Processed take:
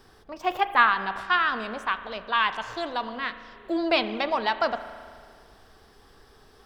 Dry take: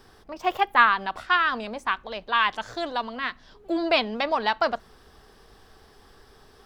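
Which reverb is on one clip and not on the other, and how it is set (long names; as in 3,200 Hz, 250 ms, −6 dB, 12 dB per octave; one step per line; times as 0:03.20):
spring reverb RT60 2 s, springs 36 ms, chirp 50 ms, DRR 11 dB
level −1.5 dB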